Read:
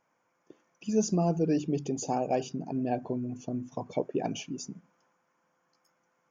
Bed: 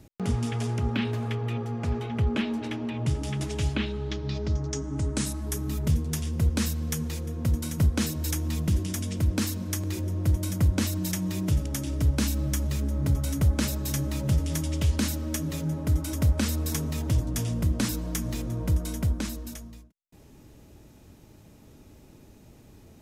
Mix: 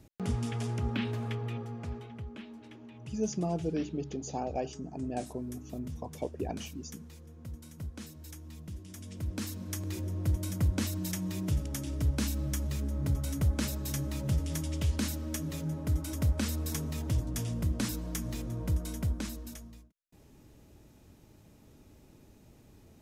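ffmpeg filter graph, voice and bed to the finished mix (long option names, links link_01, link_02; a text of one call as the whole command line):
ffmpeg -i stem1.wav -i stem2.wav -filter_complex "[0:a]adelay=2250,volume=-5.5dB[link_01];[1:a]volume=7.5dB,afade=type=out:start_time=1.32:duration=0.95:silence=0.223872,afade=type=in:start_time=8.83:duration=1.12:silence=0.237137[link_02];[link_01][link_02]amix=inputs=2:normalize=0" out.wav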